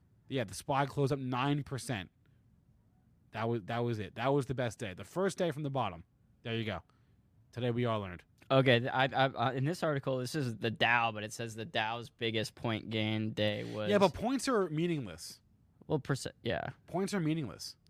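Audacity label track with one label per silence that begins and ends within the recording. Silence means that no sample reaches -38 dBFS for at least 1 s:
2.020000	3.350000	silence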